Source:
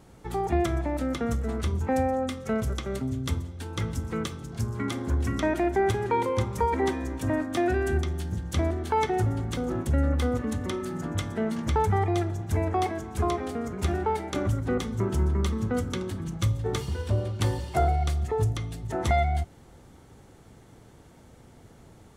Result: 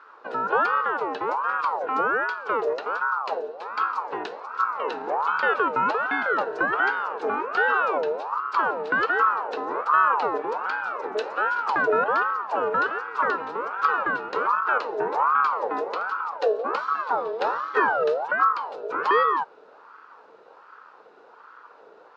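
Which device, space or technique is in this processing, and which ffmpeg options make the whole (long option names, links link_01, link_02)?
voice changer toy: -filter_complex "[0:a]asettb=1/sr,asplit=3[link_01][link_02][link_03];[link_01]atrim=end=11.134[link_04];[link_02]atrim=start=11.13:end=11.82,asetpts=PTS-STARTPTS,afade=type=in:duration=0.004:curve=qsin,afade=type=out:start_time=0.686:duration=0.004:curve=qsin,aemphasis=mode=production:type=cd[link_05];[link_03]atrim=start=11.816[link_06];[link_04][link_05]acrossfade=duration=0.004:curve1=hsin:curve2=qsin[link_07];[link_07][link_06]acrossfade=duration=0.004:curve1=qsin:curve2=hsin,aeval=exprs='val(0)*sin(2*PI*870*n/s+870*0.4/1.3*sin(2*PI*1.3*n/s))':channel_layout=same,highpass=420,equalizer=frequency=450:width_type=q:width=4:gain=8,equalizer=frequency=690:width_type=q:width=4:gain=-7,equalizer=frequency=1400:width_type=q:width=4:gain=7,equalizer=frequency=2100:width_type=q:width=4:gain=-7,equalizer=frequency=3200:width_type=q:width=4:gain=-5,lowpass=frequency=4100:width=0.5412,lowpass=frequency=4100:width=1.3066,volume=4.5dB"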